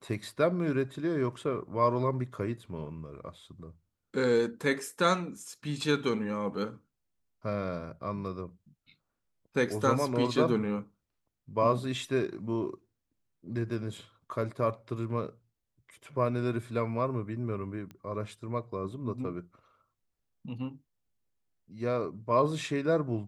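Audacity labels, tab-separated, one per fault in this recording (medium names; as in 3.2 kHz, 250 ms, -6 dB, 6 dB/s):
17.910000	17.910000	pop -32 dBFS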